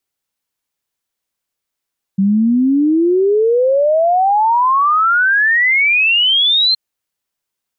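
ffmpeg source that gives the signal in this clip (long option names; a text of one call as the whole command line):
ffmpeg -f lavfi -i "aevalsrc='0.335*clip(min(t,4.57-t)/0.01,0,1)*sin(2*PI*190*4.57/log(4200/190)*(exp(log(4200/190)*t/4.57)-1))':duration=4.57:sample_rate=44100" out.wav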